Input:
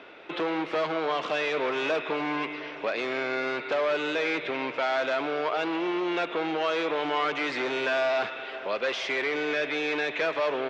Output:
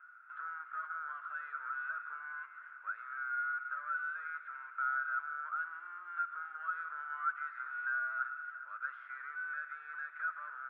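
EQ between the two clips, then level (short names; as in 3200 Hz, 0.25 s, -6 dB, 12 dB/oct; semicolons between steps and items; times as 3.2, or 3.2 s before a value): Butterworth band-pass 1400 Hz, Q 5.7; 0.0 dB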